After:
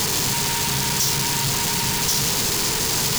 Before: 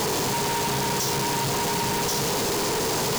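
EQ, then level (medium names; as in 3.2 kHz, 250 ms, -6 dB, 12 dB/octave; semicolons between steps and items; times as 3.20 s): peaking EQ 530 Hz -13.5 dB 2.7 oct; +7.5 dB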